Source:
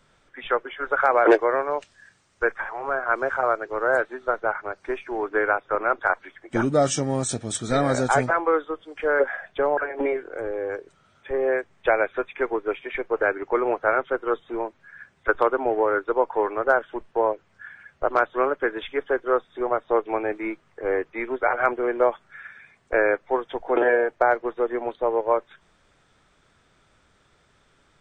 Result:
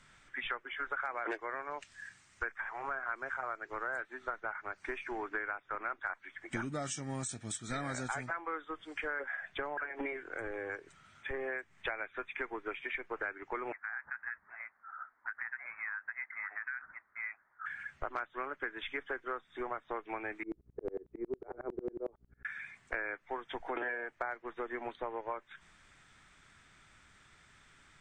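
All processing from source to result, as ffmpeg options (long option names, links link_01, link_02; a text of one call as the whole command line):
ffmpeg -i in.wav -filter_complex "[0:a]asettb=1/sr,asplit=3[link_01][link_02][link_03];[link_01]atrim=end=13.724[link_04];[link_02]atrim=start=13.72:end=17.66,asetpts=PTS-STARTPTS,afade=type=in:duration=0.004:curve=qsin,afade=type=out:start_time=3.936:duration=0.004:curve=qsin,highpass=frequency=1500:width=0.5412,highpass=frequency=1500:width=1.3066,acompressor=threshold=-34dB:ratio=4:attack=3.2:release=140:knee=1:detection=peak,lowpass=frequency=2600:width_type=q:width=0.5098,lowpass=frequency=2600:width_type=q:width=0.6013,lowpass=frequency=2600:width_type=q:width=0.9,lowpass=frequency=2600:width_type=q:width=2.563,afreqshift=-3000[link_05];[link_03]atrim=start=17.656[link_06];[link_04][link_05]acrossfade=duration=0.004:curve1=hsin:curve2=qsin[link_07];[link_07][link_06]acrossfade=duration=0.004:curve1=qsin:curve2=hsin,asettb=1/sr,asplit=3[link_08][link_09][link_10];[link_08]atrim=end=20.434[link_11];[link_09]atrim=start=20.43:end=22.45,asetpts=PTS-STARTPTS,afade=type=in:duration=0.004:curve=qsin,afade=type=out:start_time=2.016:duration=0.004:curve=qsin,lowpass=frequency=420:width_type=q:width=4.9,aeval=exprs='val(0)+0.00282*(sin(2*PI*60*n/s)+sin(2*PI*2*60*n/s)/2+sin(2*PI*3*60*n/s)/3+sin(2*PI*4*60*n/s)/4+sin(2*PI*5*60*n/s)/5)':channel_layout=same,aeval=exprs='val(0)*pow(10,-31*if(lt(mod(-11*n/s,1),2*abs(-11)/1000),1-mod(-11*n/s,1)/(2*abs(-11)/1000),(mod(-11*n/s,1)-2*abs(-11)/1000)/(1-2*abs(-11)/1000))/20)':channel_layout=same[link_12];[link_10]atrim=start=22.446[link_13];[link_11][link_12]acrossfade=duration=0.004:curve1=hsin:curve2=qsin[link_14];[link_14][link_13]acrossfade=duration=0.004:curve1=qsin:curve2=hsin,equalizer=frequency=500:width_type=o:width=1:gain=-9,equalizer=frequency=2000:width_type=o:width=1:gain=7,equalizer=frequency=8000:width_type=o:width=1:gain=9,acompressor=threshold=-34dB:ratio=5,highshelf=frequency=7100:gain=-7,volume=-2dB" out.wav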